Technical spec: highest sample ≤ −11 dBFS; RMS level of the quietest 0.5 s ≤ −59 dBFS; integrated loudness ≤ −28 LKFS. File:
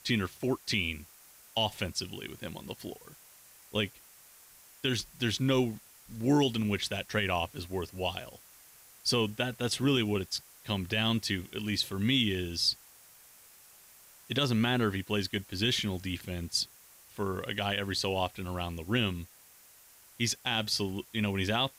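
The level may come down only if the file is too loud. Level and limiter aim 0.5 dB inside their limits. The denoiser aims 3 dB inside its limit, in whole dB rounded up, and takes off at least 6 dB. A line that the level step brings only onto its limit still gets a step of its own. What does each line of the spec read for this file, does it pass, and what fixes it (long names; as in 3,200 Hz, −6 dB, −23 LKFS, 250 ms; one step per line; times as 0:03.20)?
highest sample −16.5 dBFS: in spec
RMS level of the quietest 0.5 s −57 dBFS: out of spec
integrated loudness −31.5 LKFS: in spec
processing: broadband denoise 6 dB, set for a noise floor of −57 dBFS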